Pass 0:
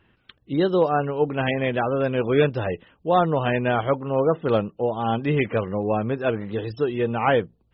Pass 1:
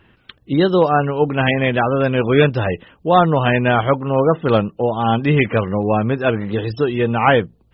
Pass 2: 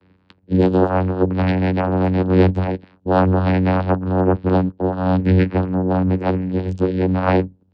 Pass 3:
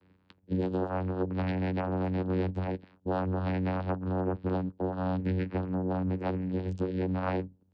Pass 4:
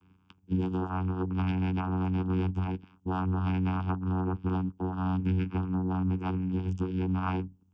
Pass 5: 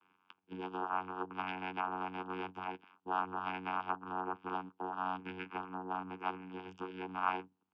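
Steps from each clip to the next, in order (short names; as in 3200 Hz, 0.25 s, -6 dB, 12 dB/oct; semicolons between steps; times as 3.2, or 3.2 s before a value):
dynamic EQ 470 Hz, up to -4 dB, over -30 dBFS, Q 0.94; gain +8.5 dB
vocoder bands 8, saw 92.5 Hz
compressor 4:1, threshold -19 dBFS, peak gain reduction 9.5 dB; gain -8.5 dB
fixed phaser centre 2800 Hz, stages 8; gain +3.5 dB
BPF 690–2800 Hz; gain +2.5 dB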